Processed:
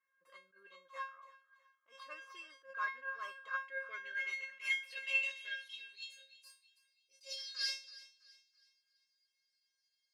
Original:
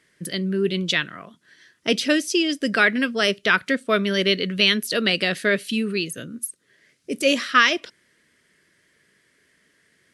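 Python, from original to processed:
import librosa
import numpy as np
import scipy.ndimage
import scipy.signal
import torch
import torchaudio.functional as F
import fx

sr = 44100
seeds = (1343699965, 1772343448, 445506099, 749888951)

y = fx.tracing_dist(x, sr, depth_ms=0.13)
y = fx.graphic_eq_15(y, sr, hz=(400, 1000, 2500), db=(7, -11, 6), at=(3.58, 4.18))
y = fx.filter_sweep_bandpass(y, sr, from_hz=1200.0, to_hz=4800.0, start_s=3.43, end_s=6.4, q=5.7)
y = scipy.signal.sosfilt(scipy.signal.butter(2, 250.0, 'highpass', fs=sr, output='sos'), y)
y = fx.comb_fb(y, sr, f0_hz=540.0, decay_s=0.33, harmonics='all', damping=0.0, mix_pct=100)
y = fx.echo_thinned(y, sr, ms=328, feedback_pct=39, hz=560.0, wet_db=-18.0)
y = fx.attack_slew(y, sr, db_per_s=220.0)
y = F.gain(torch.from_numpy(y), 11.0).numpy()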